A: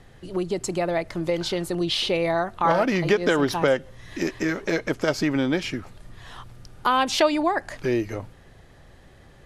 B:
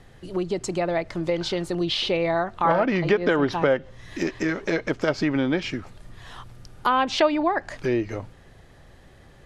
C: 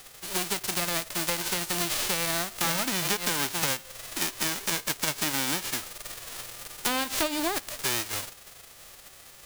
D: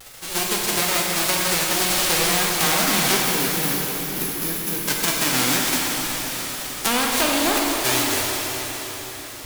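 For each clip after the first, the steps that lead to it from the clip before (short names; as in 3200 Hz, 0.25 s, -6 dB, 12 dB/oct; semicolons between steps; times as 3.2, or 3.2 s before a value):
treble ducked by the level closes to 2700 Hz, closed at -17 dBFS
spectral whitening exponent 0.1; compressor 4:1, threshold -25 dBFS, peak gain reduction 10 dB
wow and flutter 120 cents; spectral gain 3.2–4.82, 510–10000 Hz -11 dB; plate-style reverb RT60 4.8 s, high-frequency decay 0.95×, DRR -3 dB; gain +4.5 dB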